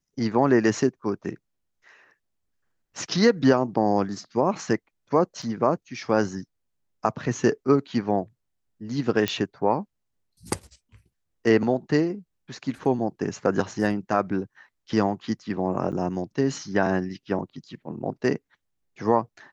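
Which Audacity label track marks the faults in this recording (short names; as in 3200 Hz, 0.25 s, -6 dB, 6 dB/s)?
5.420000	5.430000	gap 5.4 ms
9.280000	9.280000	pop -9 dBFS
15.920000	15.930000	gap 6.6 ms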